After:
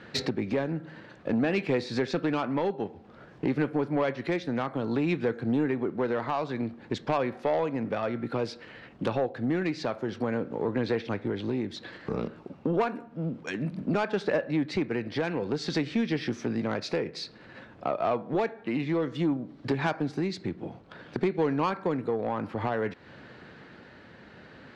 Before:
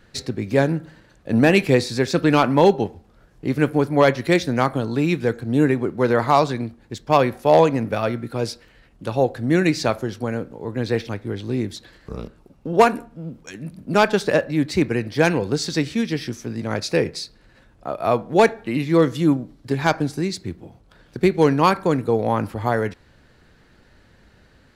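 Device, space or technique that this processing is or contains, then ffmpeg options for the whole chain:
AM radio: -af "highpass=150,lowpass=3300,acompressor=threshold=-33dB:ratio=4,asoftclip=type=tanh:threshold=-25.5dB,tremolo=f=0.56:d=0.26,volume=8.5dB"

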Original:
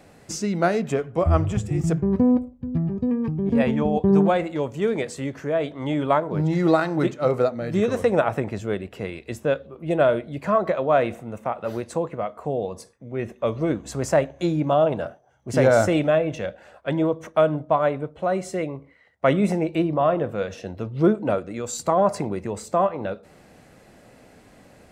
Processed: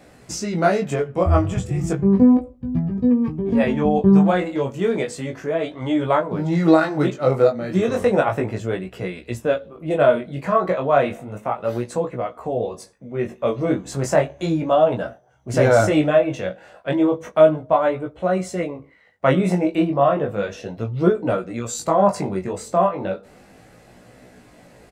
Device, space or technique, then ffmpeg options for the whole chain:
double-tracked vocal: -filter_complex "[0:a]asplit=2[link_01][link_02];[link_02]adelay=16,volume=-8.5dB[link_03];[link_01][link_03]amix=inputs=2:normalize=0,flanger=delay=16.5:depth=5.7:speed=0.33,volume=5dB"

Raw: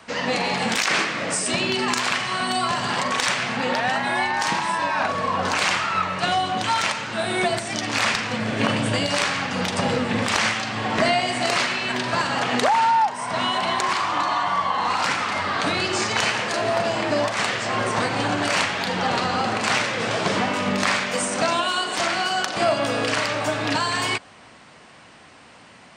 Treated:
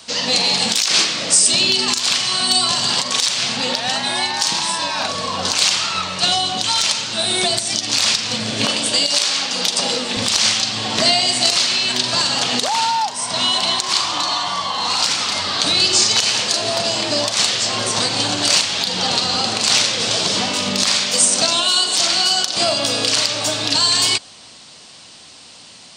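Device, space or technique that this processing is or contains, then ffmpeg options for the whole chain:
over-bright horn tweeter: -filter_complex "[0:a]highshelf=frequency=2800:width_type=q:width=1.5:gain=13,alimiter=limit=-2dB:level=0:latency=1:release=155,asettb=1/sr,asplit=3[link_01][link_02][link_03];[link_01]atrim=end=8.654[link_04];[link_02]atrim=start=8.65:end=10.17,asetpts=PTS-STARTPTS,afade=type=in:duration=0.004:curve=qsin,afade=type=out:start_time=1.516:duration=0.004:curve=qsin,highpass=270[link_05];[link_03]atrim=start=10.166[link_06];[link_04][link_05]acrossfade=duration=0.004:curve1=hsin:curve2=qsin[link_07];[link_07][link_06]acrossfade=duration=0.004:curve1=qsin:curve2=hsin"

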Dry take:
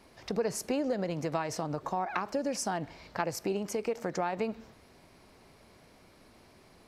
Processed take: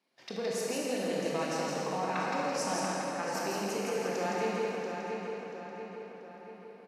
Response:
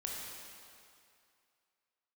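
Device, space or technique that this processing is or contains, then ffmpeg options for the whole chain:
stadium PA: -filter_complex "[0:a]agate=range=-16dB:threshold=-53dB:ratio=16:detection=peak,asettb=1/sr,asplit=3[link_01][link_02][link_03];[link_01]atrim=end=2.744[link_04];[link_02]atrim=start=2.74:end=3.23,asetpts=PTS-STARTPTS,afade=type=in:duration=0.004:curve=qsin,afade=type=out:start_time=0.486:duration=0.004:curve=qsin,lowpass=1800[link_05];[link_03]atrim=start=3.226[link_06];[link_04][link_05]acrossfade=duration=0.004:curve1=hsin:curve2=qsin[link_07];[link_07][link_06]acrossfade=duration=0.004:curve1=qsin:curve2=hsin,highpass=frequency=160:width=0.5412,highpass=frequency=160:width=1.3066,equalizer=frequency=3200:width_type=o:width=1.9:gain=6.5,aecho=1:1:166.2|236.2:0.631|0.316[link_08];[1:a]atrim=start_sample=2205[link_09];[link_08][link_09]afir=irnorm=-1:irlink=0,asplit=2[link_10][link_11];[link_11]adelay=685,lowpass=frequency=3600:poles=1,volume=-5.5dB,asplit=2[link_12][link_13];[link_13]adelay=685,lowpass=frequency=3600:poles=1,volume=0.54,asplit=2[link_14][link_15];[link_15]adelay=685,lowpass=frequency=3600:poles=1,volume=0.54,asplit=2[link_16][link_17];[link_17]adelay=685,lowpass=frequency=3600:poles=1,volume=0.54,asplit=2[link_18][link_19];[link_19]adelay=685,lowpass=frequency=3600:poles=1,volume=0.54,asplit=2[link_20][link_21];[link_21]adelay=685,lowpass=frequency=3600:poles=1,volume=0.54,asplit=2[link_22][link_23];[link_23]adelay=685,lowpass=frequency=3600:poles=1,volume=0.54[link_24];[link_10][link_12][link_14][link_16][link_18][link_20][link_22][link_24]amix=inputs=8:normalize=0,volume=-4dB"

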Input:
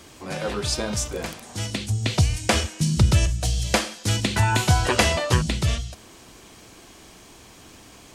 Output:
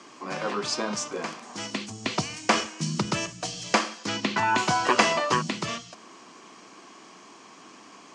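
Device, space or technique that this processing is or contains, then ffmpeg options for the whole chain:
television speaker: -filter_complex "[0:a]highpass=frequency=190:width=0.5412,highpass=frequency=190:width=1.3066,equalizer=frequency=530:width_type=q:width=4:gain=-3,equalizer=frequency=1100:width_type=q:width=4:gain=9,equalizer=frequency=3700:width_type=q:width=4:gain=-6,lowpass=frequency=6800:width=0.5412,lowpass=frequency=6800:width=1.3066,asettb=1/sr,asplit=3[link_01][link_02][link_03];[link_01]atrim=end=4.064[link_04];[link_02]atrim=start=4.06:end=4.58,asetpts=PTS-STARTPTS,afade=type=in:duration=0.004:curve=qsin,afade=type=out:start_time=0.516:duration=0.004:curve=qsin,lowpass=5600[link_05];[link_03]atrim=start=4.576[link_06];[link_04][link_05]acrossfade=duration=0.004:curve1=hsin:curve2=qsin[link_07];[link_07][link_06]acrossfade=duration=0.004:curve1=qsin:curve2=hsin,volume=-1dB"

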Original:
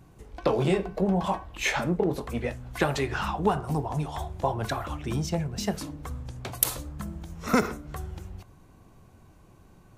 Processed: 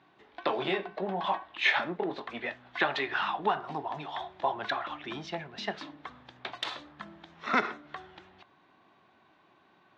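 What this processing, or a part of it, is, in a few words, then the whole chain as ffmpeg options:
phone earpiece: -af "highpass=420,equalizer=frequency=490:width_type=q:width=4:gain=-10,equalizer=frequency=1800:width_type=q:width=4:gain=5,equalizer=frequency=3600:width_type=q:width=4:gain=6,lowpass=frequency=3900:width=0.5412,lowpass=frequency=3900:width=1.3066"

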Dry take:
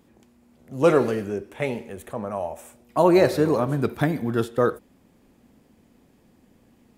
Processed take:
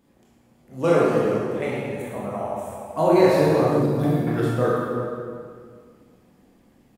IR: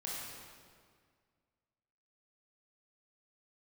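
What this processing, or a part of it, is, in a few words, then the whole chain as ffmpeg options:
stairwell: -filter_complex "[1:a]atrim=start_sample=2205[link_01];[0:a][link_01]afir=irnorm=-1:irlink=0,asettb=1/sr,asplit=3[link_02][link_03][link_04];[link_02]atrim=end=3.824[link_05];[link_03]atrim=start=3.82:end=4.27,asetpts=PTS-STARTPTS,afade=type=in:duration=0.004:curve=qsin,afade=type=out:start_time=0.446:duration=0.004:curve=qsin,equalizer=frequency=1700:width=0.95:gain=-12[link_06];[link_04]atrim=start=4.266[link_07];[link_05][link_06]acrossfade=duration=0.004:curve1=hsin:curve2=qsin[link_08];[link_08][link_07]acrossfade=duration=0.004:curve1=qsin:curve2=hsin,asplit=2[link_09][link_10];[link_10]adelay=384.8,volume=-13dB,highshelf=frequency=4000:gain=-8.66[link_11];[link_09][link_11]amix=inputs=2:normalize=0"

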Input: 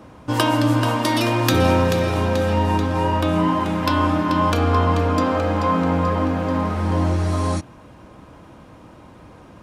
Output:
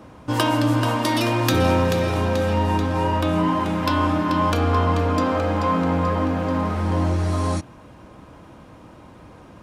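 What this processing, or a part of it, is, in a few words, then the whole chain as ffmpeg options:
parallel distortion: -filter_complex "[0:a]asplit=2[link_01][link_02];[link_02]asoftclip=type=hard:threshold=-20.5dB,volume=-9.5dB[link_03];[link_01][link_03]amix=inputs=2:normalize=0,volume=-3dB"

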